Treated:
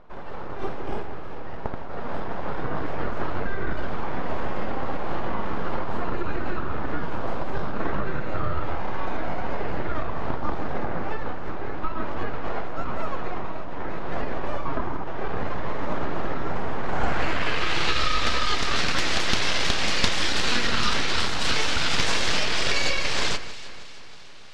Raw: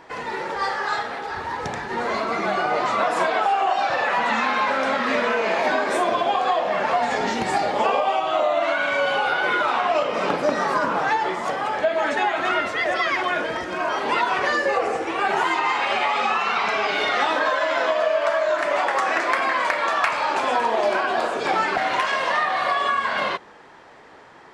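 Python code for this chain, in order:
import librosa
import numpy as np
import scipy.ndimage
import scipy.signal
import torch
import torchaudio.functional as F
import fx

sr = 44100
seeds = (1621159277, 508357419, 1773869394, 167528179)

p1 = fx.high_shelf_res(x, sr, hz=2700.0, db=13.0, q=1.5)
p2 = np.abs(p1)
p3 = p2 + fx.echo_alternate(p2, sr, ms=158, hz=2300.0, feedback_pct=71, wet_db=-12.0, dry=0)
y = fx.filter_sweep_lowpass(p3, sr, from_hz=920.0, to_hz=4600.0, start_s=16.81, end_s=18.05, q=0.96)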